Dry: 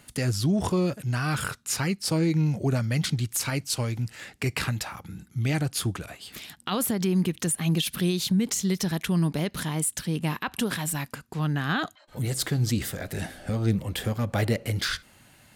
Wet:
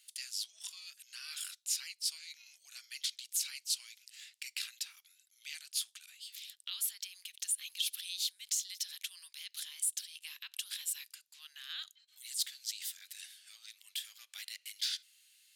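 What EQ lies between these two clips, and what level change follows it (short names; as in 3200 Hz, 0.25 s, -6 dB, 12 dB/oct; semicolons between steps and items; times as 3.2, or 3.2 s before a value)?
ladder high-pass 2600 Hz, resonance 25%; 0.0 dB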